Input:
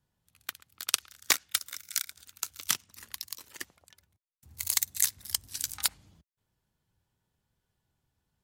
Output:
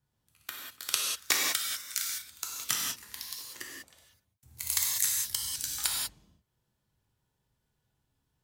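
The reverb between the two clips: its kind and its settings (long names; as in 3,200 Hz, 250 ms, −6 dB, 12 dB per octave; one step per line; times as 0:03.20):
reverb whose tail is shaped and stops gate 220 ms flat, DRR −2.5 dB
level −3.5 dB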